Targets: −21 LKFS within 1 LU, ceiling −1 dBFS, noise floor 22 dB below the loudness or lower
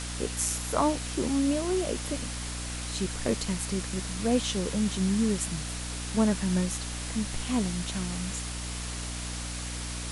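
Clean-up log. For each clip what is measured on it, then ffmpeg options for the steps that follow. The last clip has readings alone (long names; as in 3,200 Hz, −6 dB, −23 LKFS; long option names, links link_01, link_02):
mains hum 60 Hz; hum harmonics up to 300 Hz; level of the hum −35 dBFS; background noise floor −36 dBFS; target noise floor −52 dBFS; integrated loudness −30.0 LKFS; sample peak −12.0 dBFS; target loudness −21.0 LKFS
→ -af "bandreject=frequency=60:width_type=h:width=6,bandreject=frequency=120:width_type=h:width=6,bandreject=frequency=180:width_type=h:width=6,bandreject=frequency=240:width_type=h:width=6,bandreject=frequency=300:width_type=h:width=6"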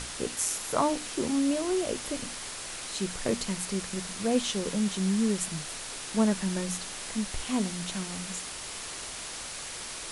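mains hum none found; background noise floor −39 dBFS; target noise floor −53 dBFS
→ -af "afftdn=noise_reduction=14:noise_floor=-39"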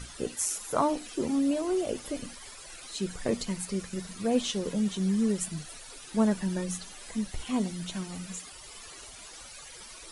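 background noise floor −47 dBFS; target noise floor −53 dBFS
→ -af "afftdn=noise_reduction=6:noise_floor=-47"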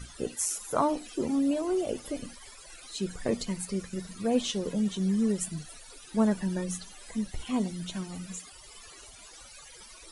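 background noise floor −50 dBFS; target noise floor −53 dBFS
→ -af "afftdn=noise_reduction=6:noise_floor=-50"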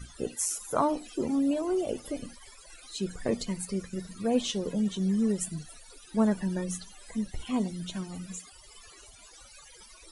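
background noise floor −53 dBFS; integrated loudness −31.0 LKFS; sample peak −12.5 dBFS; target loudness −21.0 LKFS
→ -af "volume=10dB"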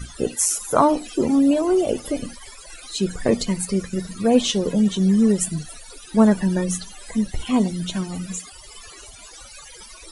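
integrated loudness −21.0 LKFS; sample peak −2.5 dBFS; background noise floor −43 dBFS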